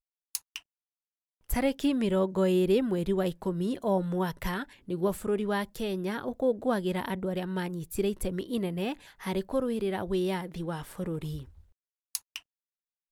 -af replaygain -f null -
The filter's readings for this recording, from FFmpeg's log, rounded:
track_gain = +10.2 dB
track_peak = 0.189